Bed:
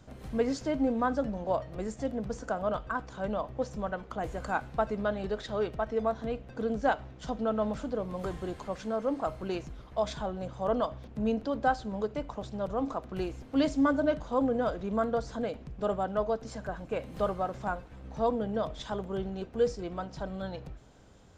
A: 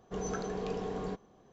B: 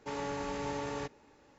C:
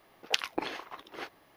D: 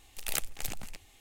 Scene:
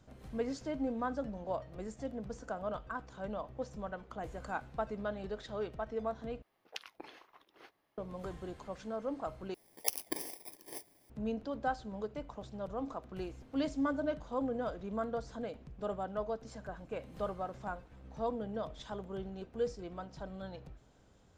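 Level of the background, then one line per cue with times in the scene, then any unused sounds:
bed -7.5 dB
6.42 replace with C -16.5 dB
9.54 replace with C -4.5 dB + FFT order left unsorted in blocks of 32 samples
not used: A, B, D

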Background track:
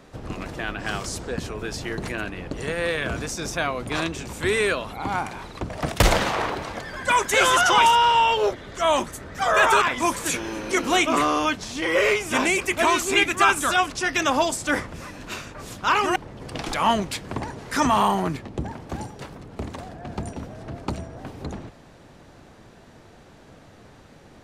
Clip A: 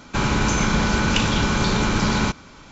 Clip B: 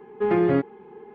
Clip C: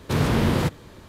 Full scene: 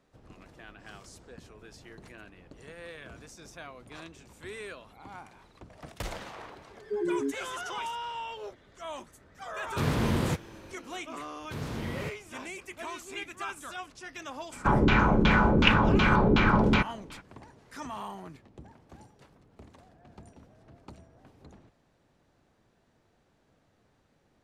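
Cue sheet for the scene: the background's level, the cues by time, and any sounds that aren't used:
background track -19.5 dB
6.7 add B -8 dB + loudest bins only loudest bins 4
9.67 add C -6.5 dB
11.41 add C -15 dB
14.51 add A -3 dB, fades 0.02 s + LFO low-pass saw down 2.7 Hz 320–3400 Hz

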